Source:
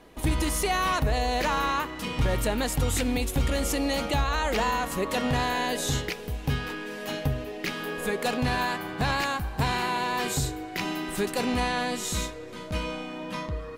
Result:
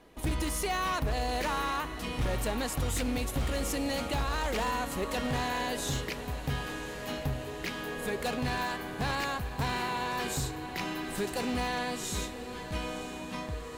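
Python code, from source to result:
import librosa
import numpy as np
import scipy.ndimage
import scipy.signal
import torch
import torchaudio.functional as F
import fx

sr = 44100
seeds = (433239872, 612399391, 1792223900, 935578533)

y = fx.echo_diffused(x, sr, ms=956, feedback_pct=69, wet_db=-13)
y = 10.0 ** (-19.5 / 20.0) * (np.abs((y / 10.0 ** (-19.5 / 20.0) + 3.0) % 4.0 - 2.0) - 1.0)
y = y * librosa.db_to_amplitude(-5.0)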